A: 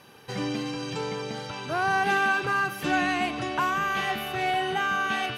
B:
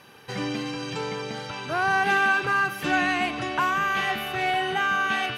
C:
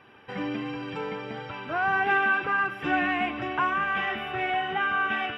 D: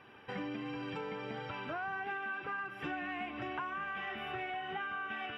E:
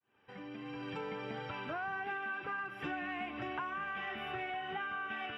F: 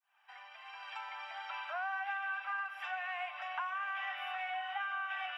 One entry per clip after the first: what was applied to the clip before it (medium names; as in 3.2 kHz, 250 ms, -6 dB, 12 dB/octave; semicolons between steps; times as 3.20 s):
peaking EQ 1.9 kHz +3.5 dB 1.7 oct
Savitzky-Golay filter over 25 samples; flange 1.4 Hz, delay 2.5 ms, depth 1.6 ms, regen -51%; trim +2 dB
compression 6:1, threshold -34 dBFS, peak gain reduction 14 dB; trim -3 dB
fade-in on the opening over 1.02 s
steep high-pass 660 Hz 72 dB/octave; trim +1.5 dB